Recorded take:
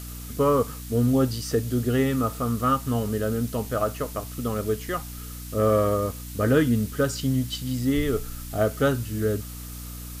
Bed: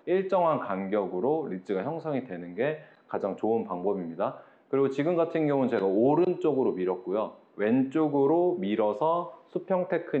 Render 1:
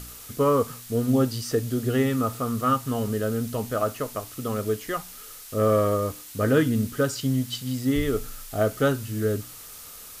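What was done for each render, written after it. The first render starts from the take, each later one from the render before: de-hum 60 Hz, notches 5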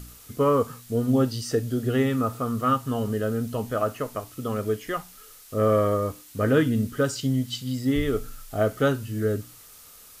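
noise print and reduce 6 dB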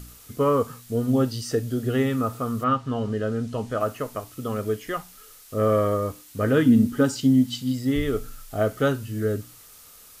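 2.63–3.79 LPF 3800 Hz -> 8900 Hz; 6.64–7.71 small resonant body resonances 250/850 Hz, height 12 dB -> 8 dB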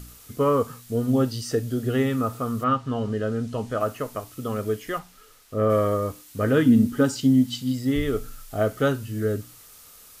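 4.98–5.69 high shelf 7300 Hz -> 3800 Hz -10 dB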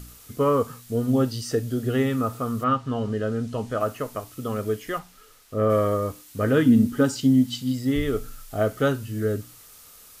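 6.76–7.34 short-mantissa float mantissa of 8-bit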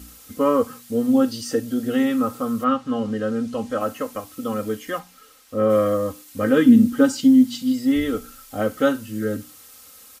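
HPF 68 Hz; comb 3.8 ms, depth 89%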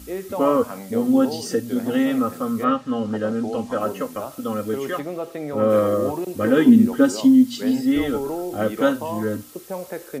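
add bed -4 dB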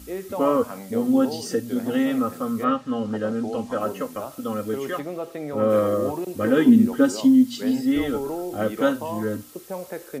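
gain -2 dB

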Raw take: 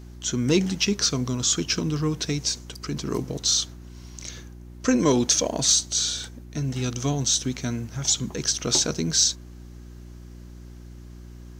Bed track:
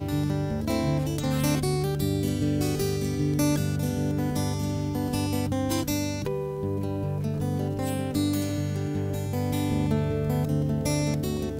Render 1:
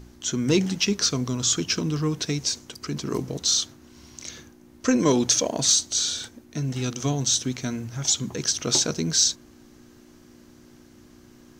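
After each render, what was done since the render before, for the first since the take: de-hum 60 Hz, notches 3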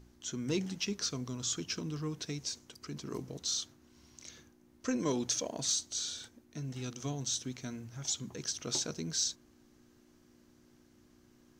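gain -12.5 dB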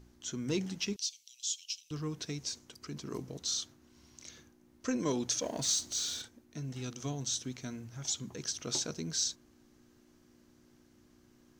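0.96–1.91 elliptic high-pass 2800 Hz, stop band 60 dB; 5.42–6.22 G.711 law mismatch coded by mu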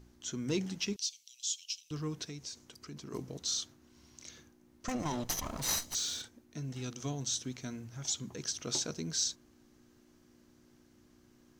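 2.24–3.13 compressor 1.5:1, threshold -49 dBFS; 4.88–5.95 minimum comb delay 0.99 ms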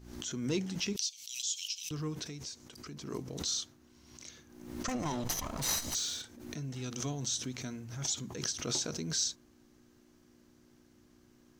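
backwards sustainer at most 62 dB/s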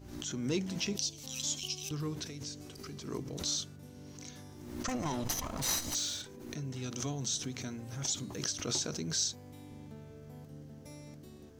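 add bed track -24 dB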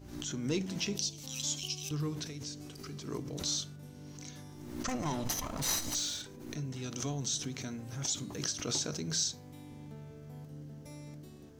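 shoebox room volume 560 m³, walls furnished, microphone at 0.36 m

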